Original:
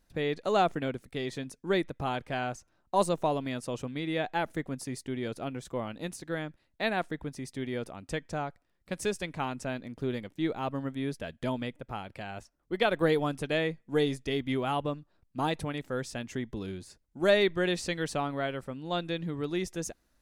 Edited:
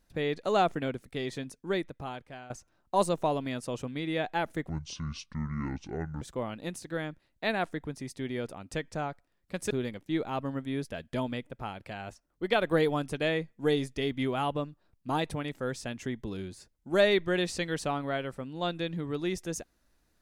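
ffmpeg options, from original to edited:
-filter_complex "[0:a]asplit=5[a][b][c][d][e];[a]atrim=end=2.5,asetpts=PTS-STARTPTS,afade=t=out:st=1.38:d=1.12:silence=0.141254[f];[b]atrim=start=2.5:end=4.694,asetpts=PTS-STARTPTS,afade=t=in:d=0.004:c=hsin:silence=0.141254[g];[c]atrim=start=4.69:end=5.59,asetpts=PTS-STARTPTS,asetrate=26019,aresample=44100,atrim=end_sample=67271,asetpts=PTS-STARTPTS[h];[d]atrim=start=5.586:end=9.082[i];[e]atrim=start=9.998[j];[f][g]concat=n=2:v=0:a=1[k];[k][h]acrossfade=d=0.004:c1=hsin:c2=hsin[l];[l][i]acrossfade=d=0.004:c1=hsin:c2=hsin[m];[m][j]acrossfade=d=0.004:c1=hsin:c2=hsin"

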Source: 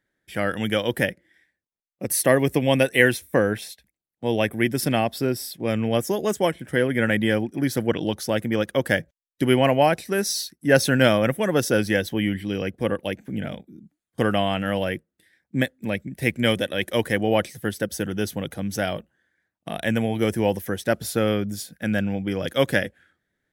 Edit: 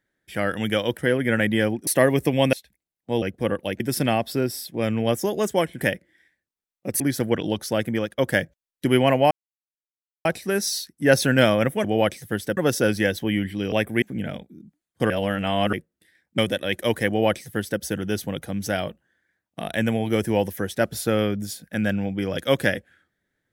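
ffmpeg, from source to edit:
-filter_complex "[0:a]asplit=17[a][b][c][d][e][f][g][h][i][j][k][l][m][n][o][p][q];[a]atrim=end=0.972[r];[b]atrim=start=6.668:end=7.572[s];[c]atrim=start=2.158:end=2.822[t];[d]atrim=start=3.668:end=4.362[u];[e]atrim=start=12.618:end=13.202[v];[f]atrim=start=4.658:end=6.672[w];[g]atrim=start=0.968:end=2.162[x];[h]atrim=start=7.568:end=8.75,asetpts=PTS-STARTPTS,afade=t=out:st=0.932:d=0.25:silence=0.211349[y];[i]atrim=start=8.75:end=9.88,asetpts=PTS-STARTPTS,afade=t=in:d=0.004:c=hsin:silence=0.211349,afade=t=out:st=1.126:d=0.004:c=hsin,apad=pad_dur=0.94[z];[j]atrim=start=9.88:end=11.472,asetpts=PTS-STARTPTS,afade=t=in:d=0.004:c=hsin[aa];[k]atrim=start=17.168:end=17.902[ab];[l]atrim=start=11.468:end=12.622[ac];[m]atrim=start=4.358:end=4.662[ad];[n]atrim=start=13.198:end=14.282[ae];[o]atrim=start=14.278:end=14.912,asetpts=PTS-STARTPTS,areverse[af];[p]atrim=start=14.908:end=15.562[ag];[q]atrim=start=16.468[ah];[r][s]acrossfade=d=0.004:c1=hsin:c2=hsin[ai];[ai][t]acrossfade=d=0.004:c1=hsin:c2=hsin[aj];[aj][u]acrossfade=d=0.004:c1=hsin:c2=hsin[ak];[ak][v]acrossfade=d=0.004:c1=hsin:c2=hsin[al];[al][w]acrossfade=d=0.004:c1=hsin:c2=hsin[am];[am][x]acrossfade=d=0.004:c1=hsin:c2=hsin[an];[y][z][aa]concat=n=3:v=0:a=1[ao];[an][ao]acrossfade=d=0.004:c1=hsin:c2=hsin[ap];[ap][ab]acrossfade=d=0.004:c1=hsin:c2=hsin[aq];[aq][ac]acrossfade=d=0.004:c1=hsin:c2=hsin[ar];[ar][ad]acrossfade=d=0.004:c1=hsin:c2=hsin[as];[as][ae]acrossfade=d=0.004:c1=hsin:c2=hsin[at];[at][af]acrossfade=d=0.004:c1=hsin:c2=hsin[au];[au][ag]acrossfade=d=0.004:c1=hsin:c2=hsin[av];[av][ah]acrossfade=d=0.004:c1=hsin:c2=hsin"

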